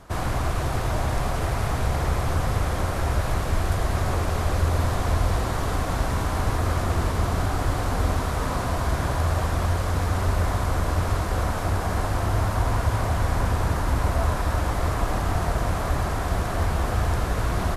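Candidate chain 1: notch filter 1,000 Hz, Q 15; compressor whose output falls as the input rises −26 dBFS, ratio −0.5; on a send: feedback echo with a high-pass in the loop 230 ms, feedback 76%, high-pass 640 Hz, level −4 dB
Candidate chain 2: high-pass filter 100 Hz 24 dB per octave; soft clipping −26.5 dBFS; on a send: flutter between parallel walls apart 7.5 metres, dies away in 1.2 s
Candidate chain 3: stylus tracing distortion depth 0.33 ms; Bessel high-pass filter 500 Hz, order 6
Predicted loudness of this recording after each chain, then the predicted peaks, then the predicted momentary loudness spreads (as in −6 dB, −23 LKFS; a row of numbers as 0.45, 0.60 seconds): −28.0, −27.5, −31.0 LKFS; −10.5, −16.0, −16.5 dBFS; 3, 2, 1 LU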